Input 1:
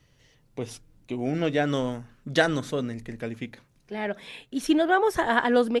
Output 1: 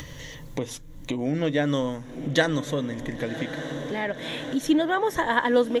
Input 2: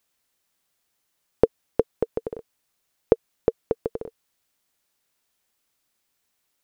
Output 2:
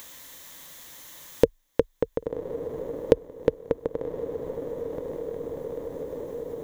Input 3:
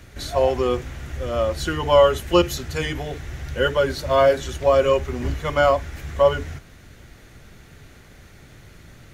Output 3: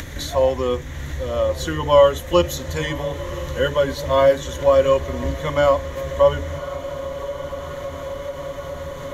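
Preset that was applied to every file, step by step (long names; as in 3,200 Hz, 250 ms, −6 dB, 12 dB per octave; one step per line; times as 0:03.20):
EQ curve with evenly spaced ripples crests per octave 1.1, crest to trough 7 dB
feedback delay with all-pass diffusion 1,072 ms, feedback 68%, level −15.5 dB
upward compression, threshold −21 dBFS
level −1 dB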